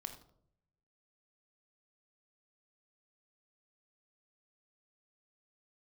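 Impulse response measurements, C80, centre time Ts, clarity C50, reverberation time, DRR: 12.0 dB, 14 ms, 9.0 dB, 0.65 s, 6.0 dB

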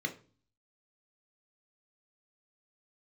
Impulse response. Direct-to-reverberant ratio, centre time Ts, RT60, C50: 4.5 dB, 9 ms, 0.40 s, 14.0 dB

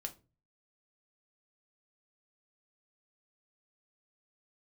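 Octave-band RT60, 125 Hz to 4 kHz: 0.60, 0.45, 0.35, 0.25, 0.25, 0.20 s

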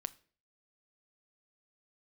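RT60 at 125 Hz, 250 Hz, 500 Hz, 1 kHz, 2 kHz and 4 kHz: 0.50, 0.50, 0.50, 0.40, 0.40, 0.40 s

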